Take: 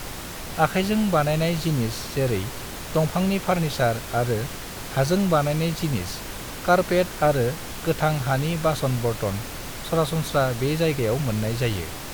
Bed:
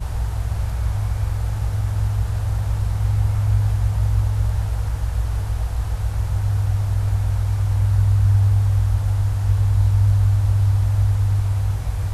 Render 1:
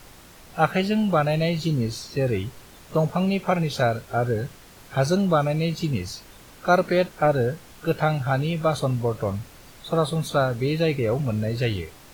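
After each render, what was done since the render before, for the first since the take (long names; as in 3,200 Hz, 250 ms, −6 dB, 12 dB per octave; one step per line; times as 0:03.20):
noise reduction from a noise print 13 dB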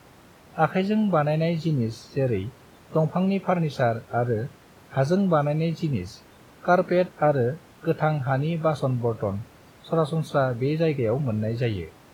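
high-pass filter 86 Hz
high-shelf EQ 2,600 Hz −11 dB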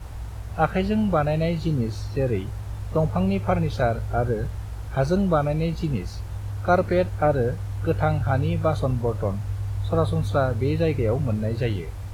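mix in bed −11 dB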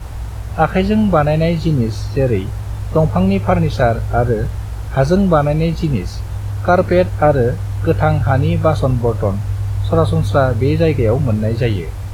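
level +8.5 dB
brickwall limiter −1 dBFS, peak gain reduction 3 dB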